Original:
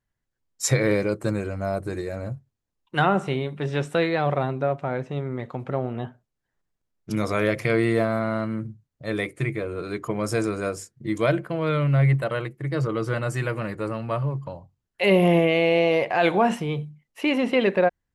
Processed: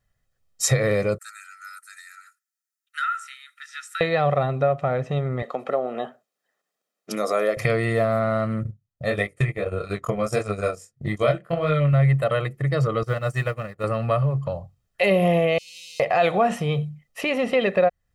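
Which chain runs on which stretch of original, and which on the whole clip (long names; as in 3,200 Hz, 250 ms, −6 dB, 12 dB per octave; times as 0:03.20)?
0:01.18–0:04.01: Chebyshev high-pass filter 1,300 Hz, order 8 + parametric band 2,900 Hz −13.5 dB 1.4 octaves
0:05.42–0:07.57: high-pass filter 260 Hz 24 dB per octave + dynamic equaliser 2,600 Hz, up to −8 dB, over −43 dBFS, Q 0.9
0:08.63–0:11.93: chorus effect 1.6 Hz, delay 19.5 ms, depth 5.5 ms + transient designer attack +5 dB, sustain −12 dB
0:13.03–0:13.84: mu-law and A-law mismatch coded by A + expander for the loud parts 2.5 to 1, over −40 dBFS
0:15.58–0:16.00: converter with a step at zero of −27.5 dBFS + inverse Chebyshev high-pass filter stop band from 1,700 Hz, stop band 50 dB + high-frequency loss of the air 71 metres
whole clip: downward compressor 2 to 1, threshold −29 dBFS; comb filter 1.6 ms, depth 61%; level +6 dB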